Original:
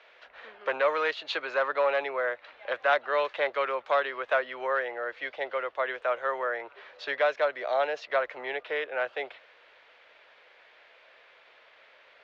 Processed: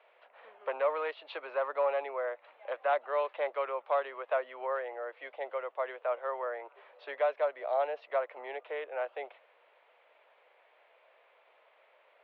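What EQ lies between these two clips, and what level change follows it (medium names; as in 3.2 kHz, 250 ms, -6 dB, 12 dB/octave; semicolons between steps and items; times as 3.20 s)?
band-pass 590–2100 Hz; distance through air 180 m; peaking EQ 1.6 kHz -11 dB 0.98 oct; +1.5 dB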